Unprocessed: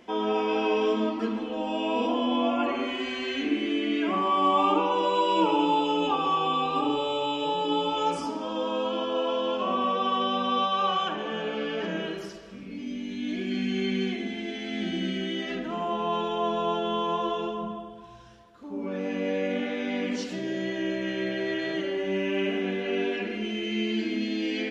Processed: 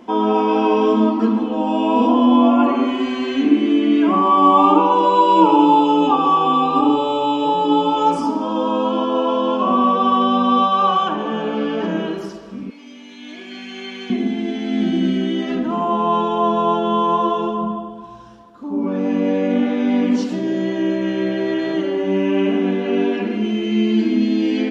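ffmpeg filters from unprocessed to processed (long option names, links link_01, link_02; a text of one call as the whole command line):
ffmpeg -i in.wav -filter_complex "[0:a]asettb=1/sr,asplit=3[link_01][link_02][link_03];[link_01]atrim=end=12.704[link_04];[link_02]atrim=start=12.7:end=14.1,asetpts=PTS-STARTPTS,afade=type=in:duration=0.004:curve=qsin,afade=type=out:start_time=1.396:duration=0.004:curve=qsin,highpass=820[link_05];[link_03]atrim=start=14.096[link_06];[link_04][link_05]acrossfade=duration=0.004:curve1=hsin:curve2=qsin[link_07];[link_07][link_06]acrossfade=duration=0.004:curve1=qsin:curve2=hsin,equalizer=frequency=250:width_type=o:width=1:gain=11,equalizer=frequency=1000:width_type=o:width=1:gain=9,equalizer=frequency=2000:width_type=o:width=1:gain=-4,volume=3.5dB" out.wav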